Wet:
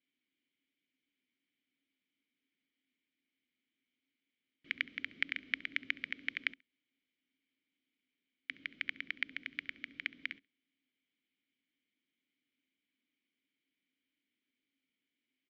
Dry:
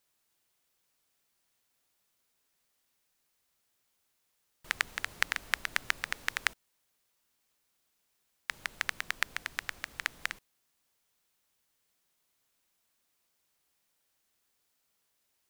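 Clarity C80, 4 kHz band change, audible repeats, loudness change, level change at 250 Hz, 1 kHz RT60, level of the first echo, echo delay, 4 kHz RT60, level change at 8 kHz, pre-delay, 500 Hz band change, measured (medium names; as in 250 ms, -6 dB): no reverb, -5.5 dB, 1, -5.0 dB, +3.5 dB, no reverb, -22.0 dB, 68 ms, no reverb, under -25 dB, no reverb, -12.0 dB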